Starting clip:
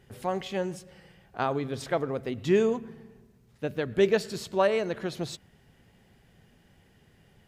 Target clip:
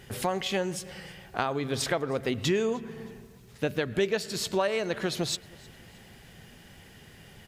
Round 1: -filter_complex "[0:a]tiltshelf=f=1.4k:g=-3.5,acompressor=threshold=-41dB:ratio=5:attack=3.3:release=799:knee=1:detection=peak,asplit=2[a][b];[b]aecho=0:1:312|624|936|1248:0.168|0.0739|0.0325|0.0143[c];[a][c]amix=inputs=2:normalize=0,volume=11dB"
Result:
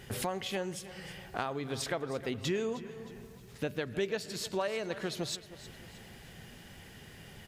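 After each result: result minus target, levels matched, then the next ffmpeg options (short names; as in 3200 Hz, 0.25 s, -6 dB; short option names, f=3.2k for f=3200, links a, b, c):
compressor: peak gain reduction +6.5 dB; echo-to-direct +9.5 dB
-filter_complex "[0:a]tiltshelf=f=1.4k:g=-3.5,acompressor=threshold=-33dB:ratio=5:attack=3.3:release=799:knee=1:detection=peak,asplit=2[a][b];[b]aecho=0:1:312|624|936|1248:0.168|0.0739|0.0325|0.0143[c];[a][c]amix=inputs=2:normalize=0,volume=11dB"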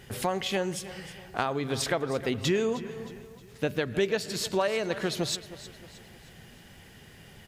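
echo-to-direct +9.5 dB
-filter_complex "[0:a]tiltshelf=f=1.4k:g=-3.5,acompressor=threshold=-33dB:ratio=5:attack=3.3:release=799:knee=1:detection=peak,asplit=2[a][b];[b]aecho=0:1:312|624|936:0.0562|0.0247|0.0109[c];[a][c]amix=inputs=2:normalize=0,volume=11dB"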